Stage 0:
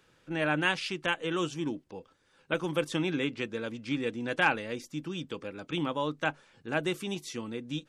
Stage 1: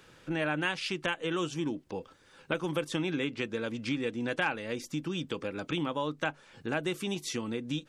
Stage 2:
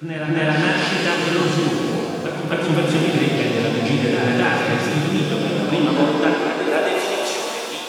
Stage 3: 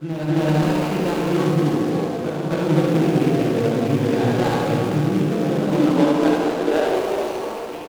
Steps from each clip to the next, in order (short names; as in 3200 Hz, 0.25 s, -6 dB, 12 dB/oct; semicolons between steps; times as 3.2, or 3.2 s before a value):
compressor 2.5:1, threshold -41 dBFS, peak gain reduction 14 dB; gain +8 dB
reverse echo 0.262 s -6.5 dB; high-pass sweep 120 Hz -> 700 Hz, 5.13–7.26; shimmer reverb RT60 2.6 s, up +7 st, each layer -8 dB, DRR -3.5 dB; gain +6.5 dB
median filter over 25 samples; echo 73 ms -5 dB